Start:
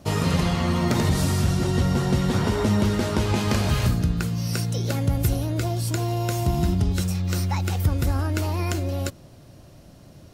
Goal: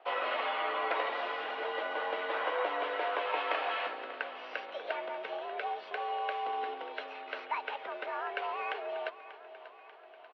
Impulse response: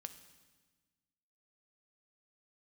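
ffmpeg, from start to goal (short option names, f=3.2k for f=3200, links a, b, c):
-af "aecho=1:1:589|1178|1767|2356|2945|3534:0.178|0.103|0.0598|0.0347|0.0201|0.0117,highpass=f=460:t=q:w=0.5412,highpass=f=460:t=q:w=1.307,lowpass=f=3k:t=q:w=0.5176,lowpass=f=3k:t=q:w=0.7071,lowpass=f=3k:t=q:w=1.932,afreqshift=86,volume=-2.5dB"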